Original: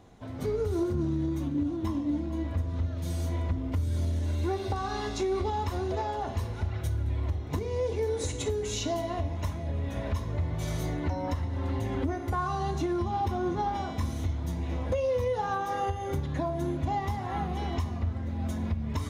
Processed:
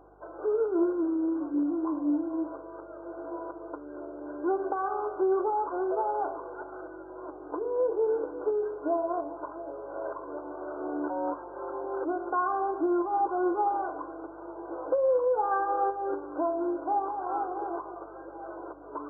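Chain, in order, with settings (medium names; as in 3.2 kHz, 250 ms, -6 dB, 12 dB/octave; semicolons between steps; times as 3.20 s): FFT band-pass 280–1600 Hz; hum 50 Hz, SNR 33 dB; trim +3.5 dB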